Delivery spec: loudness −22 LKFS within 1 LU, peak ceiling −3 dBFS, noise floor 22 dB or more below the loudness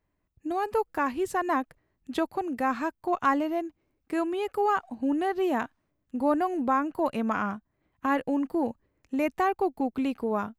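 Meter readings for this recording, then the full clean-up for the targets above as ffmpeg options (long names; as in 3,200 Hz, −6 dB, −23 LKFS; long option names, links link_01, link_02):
integrated loudness −28.5 LKFS; sample peak −12.5 dBFS; target loudness −22.0 LKFS
→ -af "volume=6.5dB"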